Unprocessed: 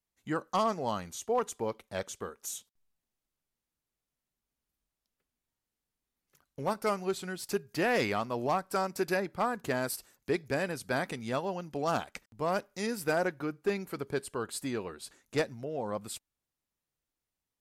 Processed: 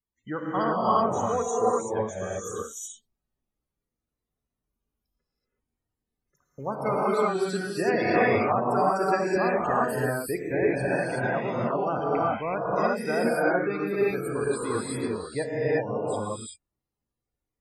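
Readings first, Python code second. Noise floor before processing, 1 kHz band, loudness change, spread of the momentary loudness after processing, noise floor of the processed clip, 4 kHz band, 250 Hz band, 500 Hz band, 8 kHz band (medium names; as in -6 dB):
under -85 dBFS, +8.0 dB, +7.0 dB, 10 LU, under -85 dBFS, -1.0 dB, +7.0 dB, +7.5 dB, +3.0 dB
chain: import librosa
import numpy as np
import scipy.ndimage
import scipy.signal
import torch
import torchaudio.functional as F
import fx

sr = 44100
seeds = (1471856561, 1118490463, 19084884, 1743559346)

y = fx.spec_topn(x, sr, count=32)
y = fx.rev_gated(y, sr, seeds[0], gate_ms=400, shape='rising', drr_db=-7.0)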